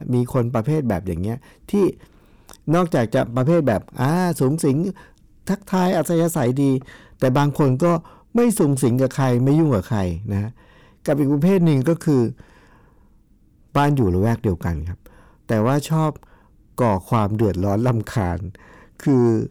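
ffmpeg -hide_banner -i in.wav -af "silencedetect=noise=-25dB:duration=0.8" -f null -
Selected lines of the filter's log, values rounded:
silence_start: 12.31
silence_end: 13.75 | silence_duration: 1.45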